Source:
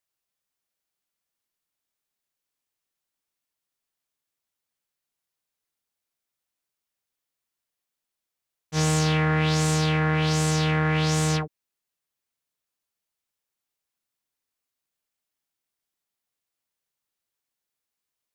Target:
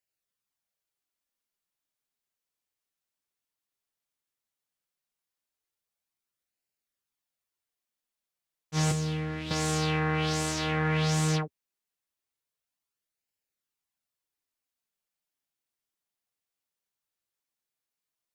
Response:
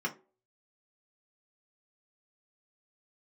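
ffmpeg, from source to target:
-filter_complex "[0:a]asettb=1/sr,asplit=3[s0][s1][s2];[s0]atrim=end=8.914[s3];[s1]atrim=start=8.91:end=9.51,asetpts=PTS-STARTPTS,afade=t=in:d=0.004:c=qsin,afade=t=out:st=0.596:d=0.004:c=qsin,acrossover=split=480|2900|7800[s4][s5][s6][s7];[s4]acompressor=threshold=0.0562:ratio=4[s8];[s5]acompressor=threshold=0.00794:ratio=4[s9];[s6]acompressor=threshold=0.0112:ratio=4[s10];[s7]acompressor=threshold=0.00631:ratio=4[s11];[s8][s9][s10][s11]amix=inputs=4:normalize=0[s12];[s2]atrim=start=9.506[s13];[s3][s12]acrossfade=d=0.004:c1=hsin:c2=qsin[s14];[s14][s13]acrossfade=d=0.004:c1=qsin:c2=hsin,flanger=delay=0.4:depth=9.9:regen=-42:speed=0.15:shape=sinusoidal"

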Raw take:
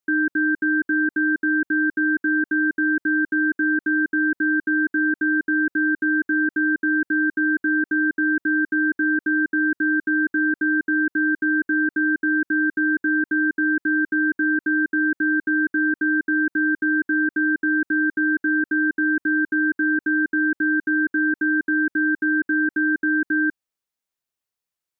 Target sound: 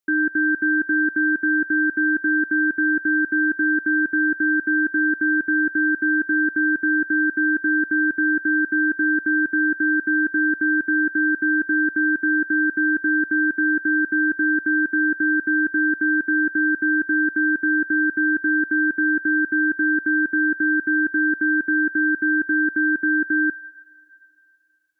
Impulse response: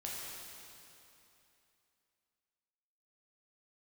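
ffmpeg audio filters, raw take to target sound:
-filter_complex "[0:a]asplit=2[s0][s1];[s1]highpass=1200[s2];[1:a]atrim=start_sample=2205[s3];[s2][s3]afir=irnorm=-1:irlink=0,volume=0.299[s4];[s0][s4]amix=inputs=2:normalize=0"

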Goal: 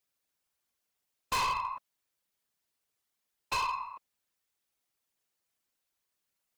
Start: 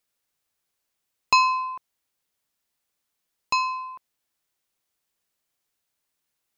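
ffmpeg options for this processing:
-af "aeval=exprs='0.531*(cos(1*acos(clip(val(0)/0.531,-1,1)))-cos(1*PI/2))+0.0841*(cos(4*acos(clip(val(0)/0.531,-1,1)))-cos(4*PI/2))+0.0266*(cos(5*acos(clip(val(0)/0.531,-1,1)))-cos(5*PI/2))':c=same,afftfilt=real='hypot(re,im)*cos(2*PI*random(0))':imag='hypot(re,im)*sin(2*PI*random(1))':win_size=512:overlap=0.75,volume=23.7,asoftclip=hard,volume=0.0422"

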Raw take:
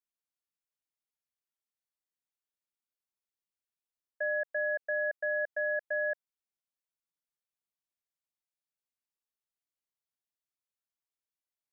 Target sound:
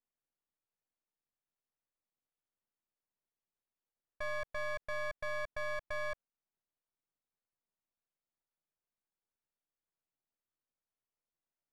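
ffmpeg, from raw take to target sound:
-af "alimiter=level_in=3.55:limit=0.0631:level=0:latency=1,volume=0.282,adynamicsmooth=sensitivity=5:basefreq=1500,aeval=exprs='max(val(0),0)':c=same,volume=2.82"

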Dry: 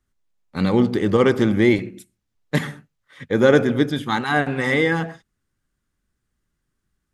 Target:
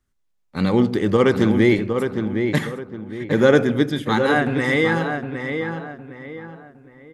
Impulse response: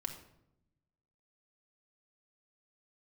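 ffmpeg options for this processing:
-filter_complex "[0:a]asplit=2[s0][s1];[s1]adelay=761,lowpass=f=2500:p=1,volume=0.501,asplit=2[s2][s3];[s3]adelay=761,lowpass=f=2500:p=1,volume=0.35,asplit=2[s4][s5];[s5]adelay=761,lowpass=f=2500:p=1,volume=0.35,asplit=2[s6][s7];[s7]adelay=761,lowpass=f=2500:p=1,volume=0.35[s8];[s0][s2][s4][s6][s8]amix=inputs=5:normalize=0"

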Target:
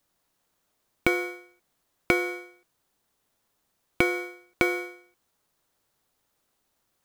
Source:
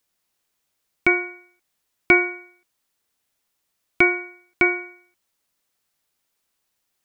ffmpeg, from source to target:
-filter_complex "[0:a]asplit=2[s0][s1];[s1]acrusher=samples=16:mix=1:aa=0.000001,volume=0.531[s2];[s0][s2]amix=inputs=2:normalize=0,acompressor=threshold=0.126:ratio=10,volume=0.891"

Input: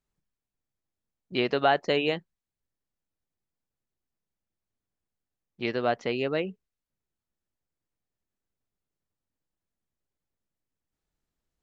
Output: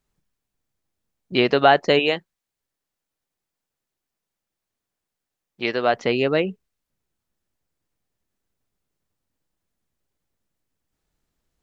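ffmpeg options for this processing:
-filter_complex "[0:a]asettb=1/sr,asplit=3[s0][s1][s2];[s0]atrim=end=1.994[s3];[s1]atrim=start=1.99:end=5.94,asetpts=PTS-STARTPTS,afade=t=in:d=0.004:c=qsin,afade=t=out:st=3.946:d=0.004:c=qsin,lowshelf=f=260:g=-10.5[s4];[s2]atrim=start=5.936[s5];[s3][s4]acrossfade=d=0.004:c1=hsin:c2=qsin[s6];[s6][s5]acrossfade=d=0.004:c1=qsin:c2=hsin,volume=2.51"

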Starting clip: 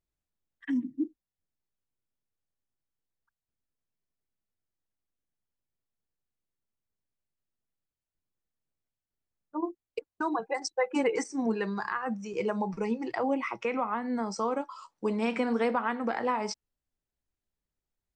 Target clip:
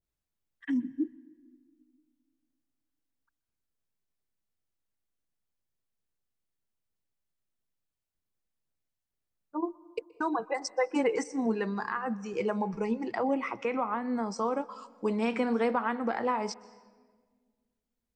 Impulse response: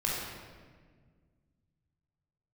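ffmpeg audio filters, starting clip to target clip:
-filter_complex "[0:a]asplit=2[s0][s1];[1:a]atrim=start_sample=2205,adelay=124[s2];[s1][s2]afir=irnorm=-1:irlink=0,volume=0.0376[s3];[s0][s3]amix=inputs=2:normalize=0,adynamicequalizer=threshold=0.00631:dfrequency=1700:dqfactor=0.7:tfrequency=1700:tqfactor=0.7:attack=5:release=100:ratio=0.375:range=1.5:mode=cutabove:tftype=highshelf"

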